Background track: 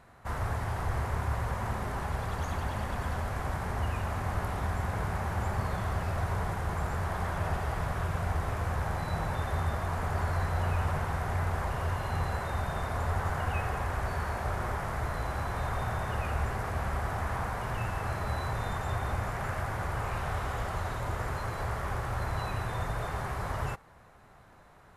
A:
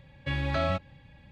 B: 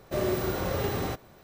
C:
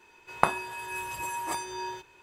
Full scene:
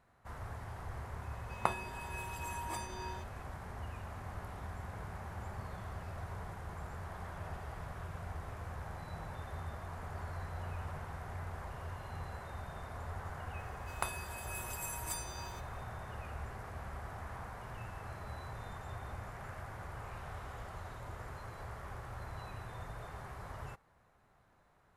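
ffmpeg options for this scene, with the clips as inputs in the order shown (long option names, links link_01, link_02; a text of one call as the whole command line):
ffmpeg -i bed.wav -i cue0.wav -i cue1.wav -i cue2.wav -filter_complex "[3:a]asplit=2[link_01][link_02];[0:a]volume=-12.5dB[link_03];[link_01]bandreject=frequency=1500:width=12[link_04];[link_02]crystalizer=i=6:c=0[link_05];[link_04]atrim=end=2.22,asetpts=PTS-STARTPTS,volume=-9dB,afade=type=in:duration=0.004:curve=hsin,afade=type=out:start_time=2.216:duration=0.004:curve=hsin,adelay=1220[link_06];[link_05]atrim=end=2.22,asetpts=PTS-STARTPTS,volume=-18dB,afade=type=in:duration=0.004:curve=hsin,afade=type=out:start_time=2.216:duration=0.004:curve=hsin,adelay=13590[link_07];[link_03][link_06][link_07]amix=inputs=3:normalize=0" out.wav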